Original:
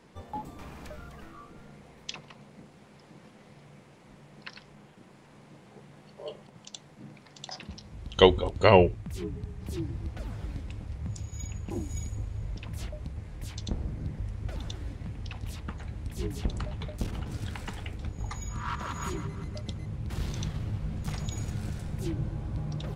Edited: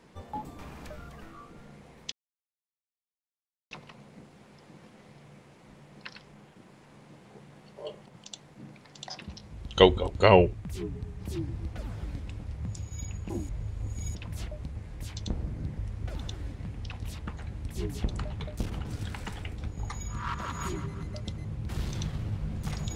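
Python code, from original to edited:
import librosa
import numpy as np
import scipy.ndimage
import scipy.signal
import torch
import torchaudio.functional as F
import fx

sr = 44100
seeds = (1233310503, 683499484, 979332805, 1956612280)

y = fx.edit(x, sr, fx.insert_silence(at_s=2.12, length_s=1.59),
    fx.reverse_span(start_s=11.9, length_s=0.66), tone=tone)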